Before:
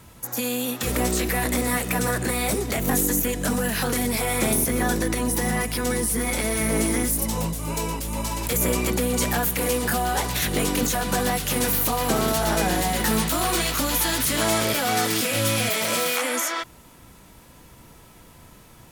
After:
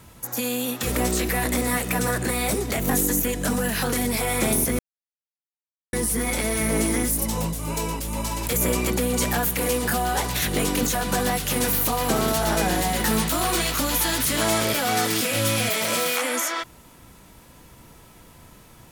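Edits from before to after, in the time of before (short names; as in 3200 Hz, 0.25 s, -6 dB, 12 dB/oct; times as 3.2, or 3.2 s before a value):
4.79–5.93 mute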